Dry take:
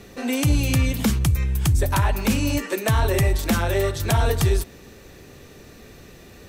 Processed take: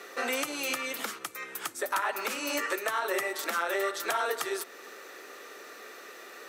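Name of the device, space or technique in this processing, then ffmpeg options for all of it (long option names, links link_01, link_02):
laptop speaker: -af "highpass=frequency=380:width=0.5412,highpass=frequency=380:width=1.3066,equalizer=frequency=1300:width_type=o:width=0.37:gain=12,equalizer=frequency=1900:width_type=o:width=0.34:gain=5,alimiter=limit=-18.5dB:level=0:latency=1:release=434"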